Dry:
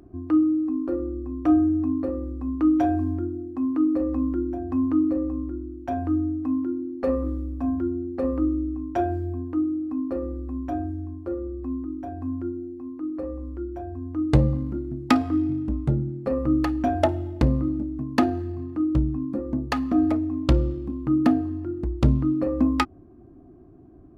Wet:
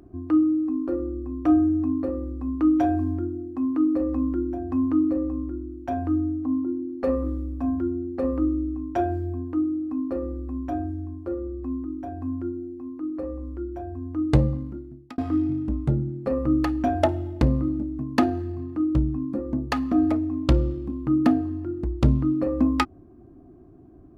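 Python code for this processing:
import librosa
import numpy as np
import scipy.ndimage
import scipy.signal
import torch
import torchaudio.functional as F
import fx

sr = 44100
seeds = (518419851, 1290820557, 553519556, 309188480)

y = fx.savgol(x, sr, points=65, at=(6.45, 6.89))
y = fx.edit(y, sr, fx.fade_out_span(start_s=14.31, length_s=0.87), tone=tone)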